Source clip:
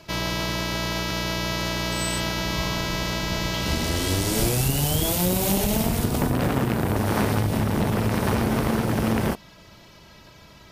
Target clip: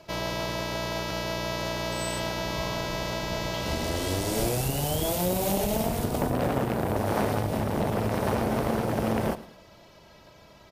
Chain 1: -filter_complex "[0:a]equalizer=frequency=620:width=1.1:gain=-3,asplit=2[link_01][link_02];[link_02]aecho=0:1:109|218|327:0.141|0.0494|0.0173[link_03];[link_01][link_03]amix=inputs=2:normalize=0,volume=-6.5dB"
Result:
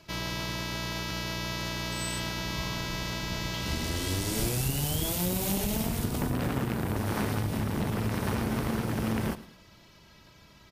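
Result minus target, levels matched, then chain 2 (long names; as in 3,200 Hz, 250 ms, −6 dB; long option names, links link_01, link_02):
500 Hz band −6.0 dB
-filter_complex "[0:a]equalizer=frequency=620:width=1.1:gain=8,asplit=2[link_01][link_02];[link_02]aecho=0:1:109|218|327:0.141|0.0494|0.0173[link_03];[link_01][link_03]amix=inputs=2:normalize=0,volume=-6.5dB"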